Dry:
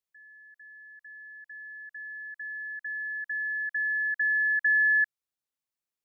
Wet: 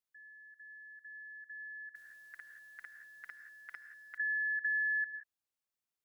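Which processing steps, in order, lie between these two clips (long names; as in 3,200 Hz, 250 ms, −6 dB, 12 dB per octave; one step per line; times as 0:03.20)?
reverb whose tail is shaped and stops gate 200 ms rising, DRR 11 dB
downward compressor 2 to 1, threshold −34 dBFS, peak gain reduction 7 dB
0:01.95–0:04.18: every bin compressed towards the loudest bin 10 to 1
level −3 dB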